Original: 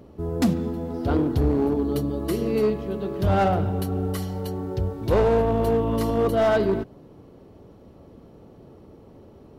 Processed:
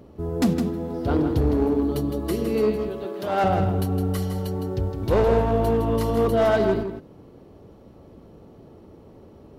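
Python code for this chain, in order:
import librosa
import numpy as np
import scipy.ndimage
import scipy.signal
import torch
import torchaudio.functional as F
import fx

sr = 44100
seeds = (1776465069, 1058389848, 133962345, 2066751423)

p1 = fx.highpass(x, sr, hz=350.0, slope=12, at=(2.89, 3.44))
y = p1 + fx.echo_single(p1, sr, ms=161, db=-8.0, dry=0)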